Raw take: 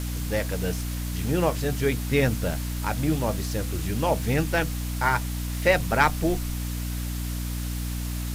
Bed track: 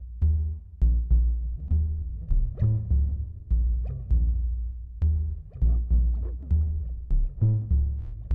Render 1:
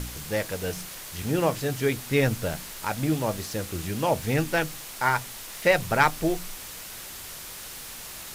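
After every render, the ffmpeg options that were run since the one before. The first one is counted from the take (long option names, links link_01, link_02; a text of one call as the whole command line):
ffmpeg -i in.wav -af "bandreject=frequency=60:width_type=h:width=4,bandreject=frequency=120:width_type=h:width=4,bandreject=frequency=180:width_type=h:width=4,bandreject=frequency=240:width_type=h:width=4,bandreject=frequency=300:width_type=h:width=4" out.wav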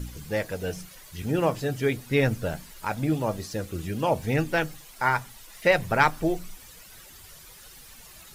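ffmpeg -i in.wav -af "afftdn=noise_reduction=12:noise_floor=-40" out.wav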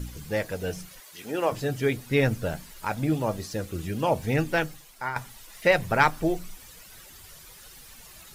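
ffmpeg -i in.wav -filter_complex "[0:a]asettb=1/sr,asplit=3[link_01][link_02][link_03];[link_01]atrim=end=1.004[link_04];[link_02]atrim=start=1:end=1.52,asetpts=PTS-STARTPTS,afade=type=in:duration=0.004:curve=qsin,afade=type=out:start_time=0.516:duration=0.004:curve=qsin,highpass=380[link_05];[link_03]atrim=start=1.516[link_06];[link_04][link_05]acrossfade=duration=0.004:curve1=hsin:curve2=qsin[link_07];[link_07][link_06]acrossfade=duration=0.004:curve1=qsin:curve2=hsin,asplit=2[link_08][link_09];[link_08]atrim=end=5.16,asetpts=PTS-STARTPTS,afade=type=out:start_time=4.58:duration=0.58:silence=0.298538[link_10];[link_09]atrim=start=5.16,asetpts=PTS-STARTPTS,afade=type=in:duration=0.004:curve=hsin:silence=0.298538[link_11];[link_10][link_11]concat=n=2:v=0:a=1" out.wav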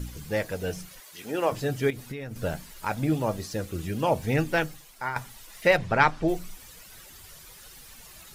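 ffmpeg -i in.wav -filter_complex "[0:a]asettb=1/sr,asplit=3[link_01][link_02][link_03];[link_01]atrim=end=1.904[link_04];[link_02]atrim=start=1.9:end=2.36,asetpts=PTS-STARTPTS,afade=type=in:duration=0.004:curve=qsin,afade=type=out:start_time=0.456:duration=0.004:curve=qsin,acompressor=threshold=-32dB:ratio=12:attack=3.2:release=140:knee=1:detection=peak[link_05];[link_03]atrim=start=2.356[link_06];[link_04][link_05]acrossfade=duration=0.004:curve1=hsin:curve2=qsin[link_07];[link_07][link_06]acrossfade=duration=0.004:curve1=qsin:curve2=hsin,asplit=3[link_08][link_09][link_10];[link_08]afade=type=out:start_time=5.76:duration=0.02[link_11];[link_09]lowpass=5200,afade=type=in:start_time=5.76:duration=0.02,afade=type=out:start_time=6.27:duration=0.02[link_12];[link_10]afade=type=in:start_time=6.27:duration=0.02[link_13];[link_11][link_12][link_13]amix=inputs=3:normalize=0" out.wav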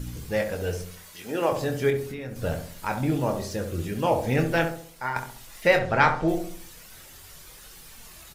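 ffmpeg -i in.wav -filter_complex "[0:a]asplit=2[link_01][link_02];[link_02]adelay=24,volume=-7dB[link_03];[link_01][link_03]amix=inputs=2:normalize=0,asplit=2[link_04][link_05];[link_05]adelay=67,lowpass=frequency=1000:poles=1,volume=-5dB,asplit=2[link_06][link_07];[link_07]adelay=67,lowpass=frequency=1000:poles=1,volume=0.49,asplit=2[link_08][link_09];[link_09]adelay=67,lowpass=frequency=1000:poles=1,volume=0.49,asplit=2[link_10][link_11];[link_11]adelay=67,lowpass=frequency=1000:poles=1,volume=0.49,asplit=2[link_12][link_13];[link_13]adelay=67,lowpass=frequency=1000:poles=1,volume=0.49,asplit=2[link_14][link_15];[link_15]adelay=67,lowpass=frequency=1000:poles=1,volume=0.49[link_16];[link_04][link_06][link_08][link_10][link_12][link_14][link_16]amix=inputs=7:normalize=0" out.wav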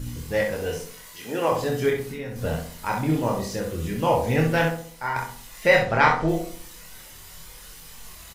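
ffmpeg -i in.wav -filter_complex "[0:a]asplit=2[link_01][link_02];[link_02]adelay=25,volume=-11dB[link_03];[link_01][link_03]amix=inputs=2:normalize=0,asplit=2[link_04][link_05];[link_05]aecho=0:1:26|63:0.668|0.473[link_06];[link_04][link_06]amix=inputs=2:normalize=0" out.wav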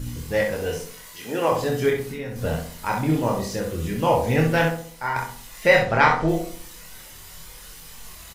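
ffmpeg -i in.wav -af "volume=1.5dB,alimiter=limit=-3dB:level=0:latency=1" out.wav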